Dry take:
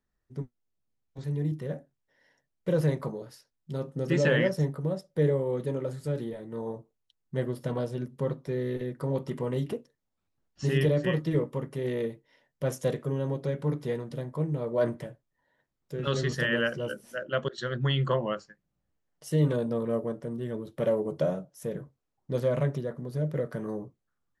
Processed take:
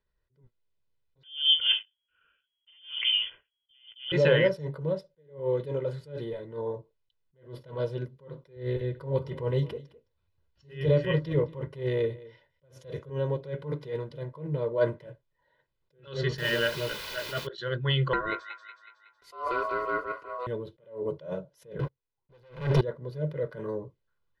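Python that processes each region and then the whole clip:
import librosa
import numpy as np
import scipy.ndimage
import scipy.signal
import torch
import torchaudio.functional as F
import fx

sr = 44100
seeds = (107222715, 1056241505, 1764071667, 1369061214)

y = fx.chain(x, sr, fx.peak_eq(hz=2300.0, db=-3.0, octaves=0.38),
    fx.leveller(passes=2),
    fx.freq_invert(carrier_hz=3300), at=(1.23, 4.12))
y = fx.chain(y, sr, fx.peak_eq(hz=77.0, db=12.0, octaves=1.0),
    fx.echo_single(ms=213, db=-20.0), at=(8.56, 13.1))
y = fx.chain(y, sr, fx.notch_comb(f0_hz=520.0),
    fx.quant_dither(seeds[0], bits=6, dither='triangular'), at=(16.38, 17.47))
y = fx.chain(y, sr, fx.ring_mod(carrier_hz=870.0),
    fx.echo_wet_highpass(ms=185, feedback_pct=53, hz=1900.0, wet_db=-5.5), at=(18.13, 20.47))
y = fx.chain(y, sr, fx.notch(hz=610.0, q=5.5),
    fx.leveller(passes=5), at=(21.79, 22.81))
y = fx.high_shelf_res(y, sr, hz=5400.0, db=-11.5, q=1.5)
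y = y + 0.65 * np.pad(y, (int(2.0 * sr / 1000.0), 0))[:len(y)]
y = fx.attack_slew(y, sr, db_per_s=150.0)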